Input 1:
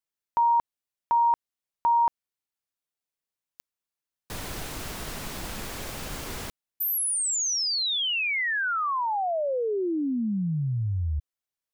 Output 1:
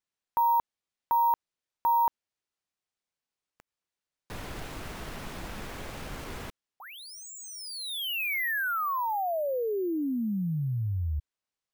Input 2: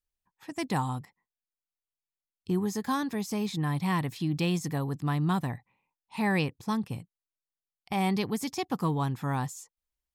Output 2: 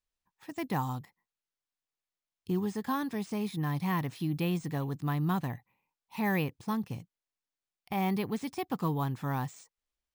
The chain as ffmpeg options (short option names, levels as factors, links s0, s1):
-filter_complex "[0:a]acrossover=split=3200[s0][s1];[s1]acompressor=threshold=0.00708:ratio=6:attack=0.15:release=66:detection=rms[s2];[s0][s2]amix=inputs=2:normalize=0,acrusher=samples=3:mix=1:aa=0.000001,volume=0.75"